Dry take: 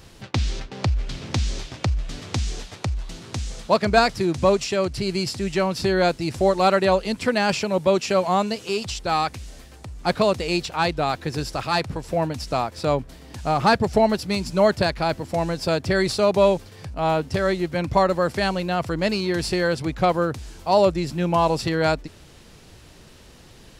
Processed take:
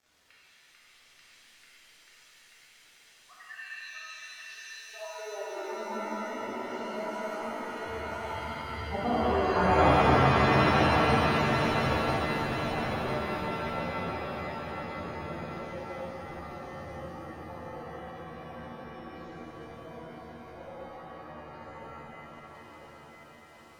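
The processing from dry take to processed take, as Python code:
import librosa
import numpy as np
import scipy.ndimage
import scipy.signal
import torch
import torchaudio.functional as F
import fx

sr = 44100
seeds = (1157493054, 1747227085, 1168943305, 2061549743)

p1 = fx.doppler_pass(x, sr, speed_mps=39, closest_m=8.5, pass_at_s=9.82)
p2 = fx.filter_sweep_highpass(p1, sr, from_hz=1800.0, to_hz=81.0, start_s=4.31, end_s=6.66, q=4.5)
p3 = (np.mod(10.0 ** (20.0 / 20.0) * p2 + 1.0, 2.0) - 1.0) / 10.0 ** (20.0 / 20.0)
p4 = p2 + (p3 * librosa.db_to_amplitude(-7.5))
p5 = fx.dmg_crackle(p4, sr, seeds[0], per_s=490.0, level_db=-48.0)
p6 = fx.hum_notches(p5, sr, base_hz=50, count=4)
p7 = fx.spec_gate(p6, sr, threshold_db=-10, keep='strong')
p8 = p7 + fx.echo_feedback(p7, sr, ms=997, feedback_pct=47, wet_db=-6.0, dry=0)
p9 = fx.transient(p8, sr, attack_db=3, sustain_db=-10)
p10 = fx.rev_shimmer(p9, sr, seeds[1], rt60_s=3.7, semitones=7, shimmer_db=-2, drr_db=-10.0)
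y = p10 * librosa.db_to_amplitude(-8.5)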